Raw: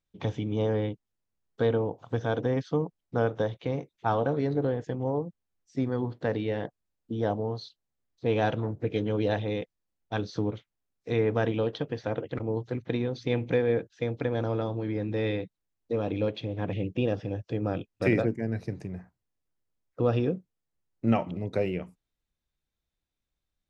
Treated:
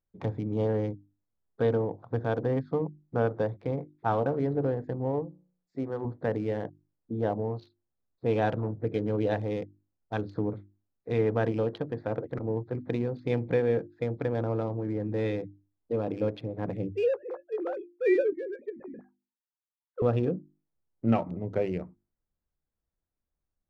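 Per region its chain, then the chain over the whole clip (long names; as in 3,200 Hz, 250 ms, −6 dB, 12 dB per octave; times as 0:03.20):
0:05.24–0:06.05: bass and treble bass −7 dB, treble +6 dB + hum removal 60.5 Hz, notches 36
0:16.93–0:20.02: three sine waves on the formant tracks + dynamic equaliser 2,200 Hz, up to −4 dB, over −47 dBFS, Q 2.5 + double-tracking delay 17 ms −12 dB
whole clip: adaptive Wiener filter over 15 samples; high-shelf EQ 4,600 Hz −11.5 dB; mains-hum notches 50/100/150/200/250/300/350 Hz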